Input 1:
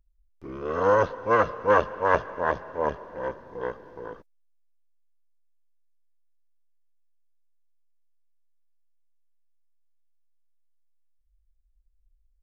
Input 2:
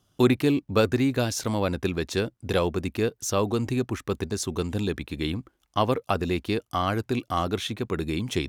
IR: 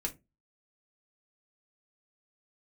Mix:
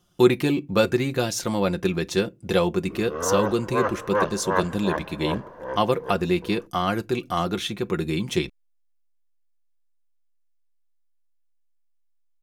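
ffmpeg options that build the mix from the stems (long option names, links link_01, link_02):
-filter_complex "[0:a]adelay=2450,volume=-1dB[link_01];[1:a]aecho=1:1:5.7:0.53,volume=-0.5dB,asplit=3[link_02][link_03][link_04];[link_03]volume=-12.5dB[link_05];[link_04]apad=whole_len=656171[link_06];[link_01][link_06]sidechaincompress=threshold=-24dB:ratio=8:attack=16:release=286[link_07];[2:a]atrim=start_sample=2205[link_08];[link_05][link_08]afir=irnorm=-1:irlink=0[link_09];[link_07][link_02][link_09]amix=inputs=3:normalize=0"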